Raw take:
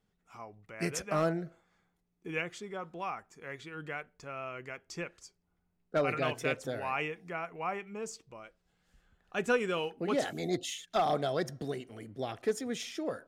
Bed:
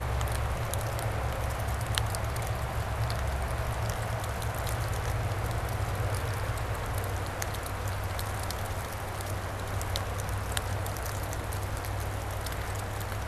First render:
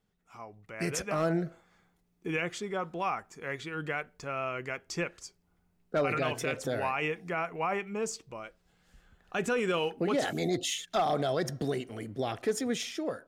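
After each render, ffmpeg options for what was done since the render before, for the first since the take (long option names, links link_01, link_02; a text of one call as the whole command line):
ffmpeg -i in.wav -af "dynaudnorm=framelen=310:gausssize=5:maxgain=6.5dB,alimiter=limit=-21dB:level=0:latency=1:release=36" out.wav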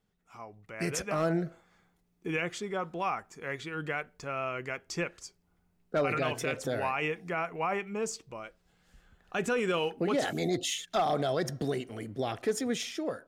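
ffmpeg -i in.wav -af anull out.wav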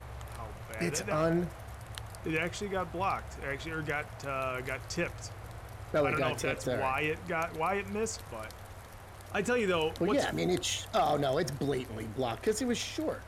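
ffmpeg -i in.wav -i bed.wav -filter_complex "[1:a]volume=-13.5dB[link_01];[0:a][link_01]amix=inputs=2:normalize=0" out.wav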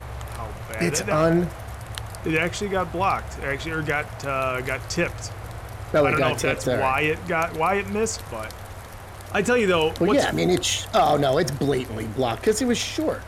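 ffmpeg -i in.wav -af "volume=9.5dB" out.wav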